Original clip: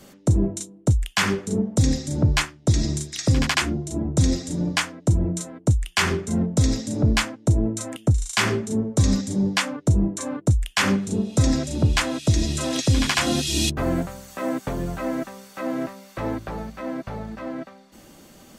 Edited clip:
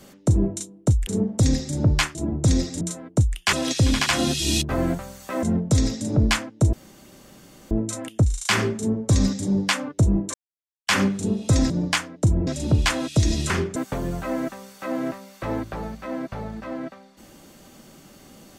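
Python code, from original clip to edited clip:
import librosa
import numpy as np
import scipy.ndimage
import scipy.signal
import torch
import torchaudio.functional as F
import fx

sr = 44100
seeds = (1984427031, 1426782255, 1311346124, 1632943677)

y = fx.edit(x, sr, fx.cut(start_s=1.07, length_s=0.38),
    fx.cut(start_s=2.53, length_s=1.35),
    fx.move(start_s=4.54, length_s=0.77, to_s=11.58),
    fx.swap(start_s=6.03, length_s=0.26, other_s=12.61, other_length_s=1.9),
    fx.insert_room_tone(at_s=7.59, length_s=0.98),
    fx.silence(start_s=10.22, length_s=0.53), tone=tone)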